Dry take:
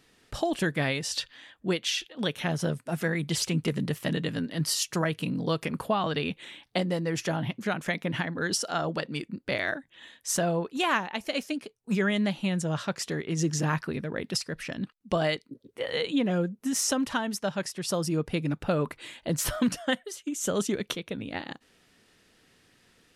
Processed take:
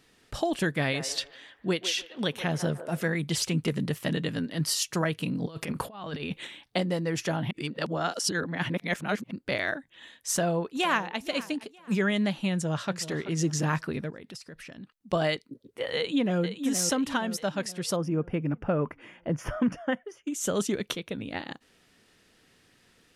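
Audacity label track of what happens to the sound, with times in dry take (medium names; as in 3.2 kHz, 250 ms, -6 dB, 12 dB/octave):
0.760000	3.010000	feedback echo behind a band-pass 151 ms, feedback 33%, band-pass 790 Hz, level -9 dB
5.370000	6.470000	compressor with a negative ratio -33 dBFS, ratio -0.5
7.510000	9.310000	reverse
10.350000	11.190000	echo throw 470 ms, feedback 30%, level -17.5 dB
12.500000	13.070000	echo throw 380 ms, feedback 30%, level -13 dB
14.100000	15.130000	compression 3:1, threshold -44 dBFS
15.960000	16.420000	echo throw 470 ms, feedback 50%, level -8.5 dB
17.960000	20.270000	boxcar filter over 11 samples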